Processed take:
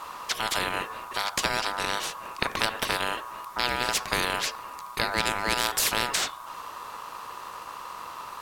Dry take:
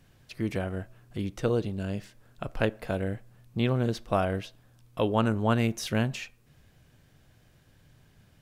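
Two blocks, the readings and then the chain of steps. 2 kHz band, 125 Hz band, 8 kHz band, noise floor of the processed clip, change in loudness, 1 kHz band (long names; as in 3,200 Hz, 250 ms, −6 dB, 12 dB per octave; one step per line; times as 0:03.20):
+10.0 dB, −13.0 dB, +15.5 dB, −42 dBFS, +2.5 dB, +7.0 dB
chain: ring modulation 1,100 Hz
parametric band 1,000 Hz +10.5 dB 0.21 octaves
every bin compressed towards the loudest bin 4 to 1
level +3 dB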